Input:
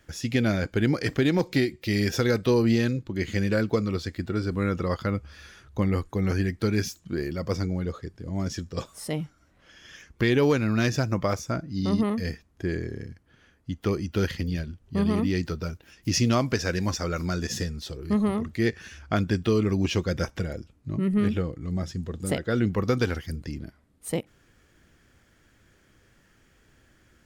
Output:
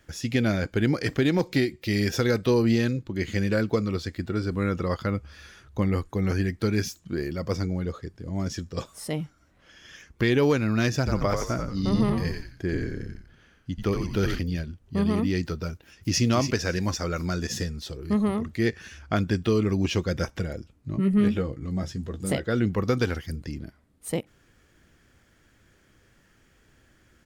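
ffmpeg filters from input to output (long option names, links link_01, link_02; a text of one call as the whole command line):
ffmpeg -i in.wav -filter_complex "[0:a]asettb=1/sr,asplit=3[link_01][link_02][link_03];[link_01]atrim=end=10.974[link_04];[link_02]atrim=start=10.97:end=14.39,asetpts=PTS-STARTPTS,afade=type=in:duration=0.004:curve=qsin,afade=type=out:start_time=3.416:duration=0.004:curve=qsin,asplit=5[link_05][link_06][link_07][link_08][link_09];[link_06]adelay=88,afreqshift=-70,volume=-4.5dB[link_10];[link_07]adelay=176,afreqshift=-140,volume=-13.6dB[link_11];[link_08]adelay=264,afreqshift=-210,volume=-22.7dB[link_12];[link_09]adelay=352,afreqshift=-280,volume=-31.9dB[link_13];[link_05][link_10][link_11][link_12][link_13]amix=inputs=5:normalize=0,atrim=end_sample=150822[link_14];[link_03]atrim=start=14.386[link_15];[link_04][link_14]acrossfade=duration=0.004:curve1=hsin:curve2=qsin[link_16];[link_16][link_15]acrossfade=duration=0.004:curve1=qsin:curve2=hsin,asplit=2[link_17][link_18];[link_18]afade=type=in:start_time=15.73:duration=0.01,afade=type=out:start_time=16.22:duration=0.01,aecho=0:1:280|560|840:0.398107|0.0796214|0.0159243[link_19];[link_17][link_19]amix=inputs=2:normalize=0,asettb=1/sr,asplit=3[link_20][link_21][link_22];[link_20]atrim=end=20.924[link_23];[link_21]atrim=start=20.92:end=22.46,asetpts=PTS-STARTPTS,afade=type=in:duration=0.004:curve=qsin,afade=type=out:start_time=1.536:duration=0.004:curve=qsin,asplit=2[link_24][link_25];[link_25]adelay=15,volume=-7dB[link_26];[link_24][link_26]amix=inputs=2:normalize=0,atrim=end_sample=67914[link_27];[link_22]atrim=start=22.456[link_28];[link_23][link_27]acrossfade=duration=0.004:curve1=hsin:curve2=qsin[link_29];[link_29][link_28]acrossfade=duration=0.004:curve1=qsin:curve2=hsin" out.wav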